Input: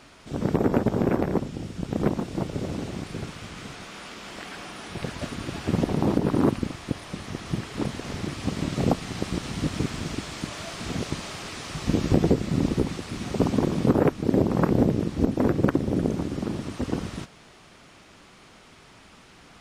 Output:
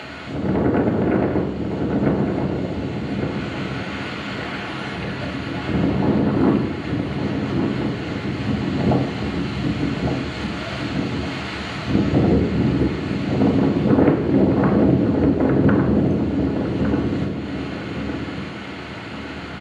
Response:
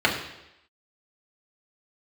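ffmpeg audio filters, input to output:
-filter_complex "[0:a]asplit=2[a][b];[b]asetrate=35002,aresample=44100,atempo=1.25992,volume=-12dB[c];[a][c]amix=inputs=2:normalize=0,acompressor=mode=upward:threshold=-26dB:ratio=2.5,asplit=2[d][e];[e]adelay=1159,lowpass=f=2k:p=1,volume=-6dB,asplit=2[f][g];[g]adelay=1159,lowpass=f=2k:p=1,volume=0.39,asplit=2[h][i];[i]adelay=1159,lowpass=f=2k:p=1,volume=0.39,asplit=2[j][k];[k]adelay=1159,lowpass=f=2k:p=1,volume=0.39,asplit=2[l][m];[m]adelay=1159,lowpass=f=2k:p=1,volume=0.39[n];[d][f][h][j][l][n]amix=inputs=6:normalize=0[o];[1:a]atrim=start_sample=2205,asetrate=42777,aresample=44100[p];[o][p]afir=irnorm=-1:irlink=0,volume=-13dB"

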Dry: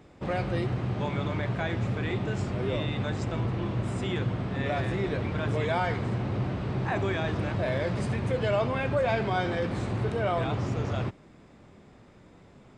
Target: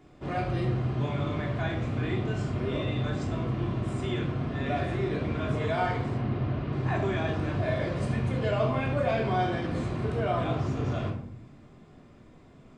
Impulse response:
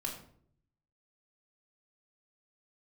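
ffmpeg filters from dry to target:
-filter_complex "[0:a]asettb=1/sr,asplit=3[a][b][c];[a]atrim=end=6.174[d];[b]atrim=start=6.17:end=6.73,asetpts=PTS-STARTPTS,afade=t=in:d=0.004:c=qsin,afade=t=out:st=0.556:d=0.004:c=qsin,lowpass=4.2k[e];[c]atrim=start=6.726[f];[d][e]acrossfade=d=0.004:c1=hsin:c2=qsin[g];[g][f]acrossfade=d=0.004:c1=qsin:c2=hsin[h];[1:a]atrim=start_sample=2205[i];[h][i]afir=irnorm=-1:irlink=0,volume=-2.5dB"

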